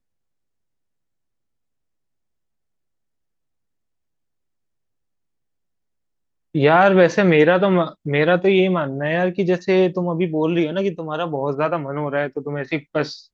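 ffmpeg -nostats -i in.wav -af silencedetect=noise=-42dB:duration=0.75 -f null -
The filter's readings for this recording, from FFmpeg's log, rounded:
silence_start: 0.00
silence_end: 6.55 | silence_duration: 6.55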